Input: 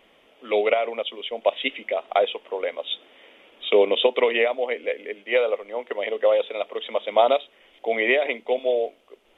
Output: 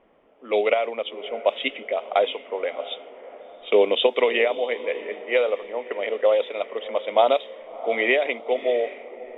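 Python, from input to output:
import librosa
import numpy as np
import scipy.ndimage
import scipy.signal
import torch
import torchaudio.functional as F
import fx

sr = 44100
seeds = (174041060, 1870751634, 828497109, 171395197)

y = fx.echo_diffused(x, sr, ms=667, feedback_pct=49, wet_db=-15.5)
y = fx.env_lowpass(y, sr, base_hz=1200.0, full_db=-15.0)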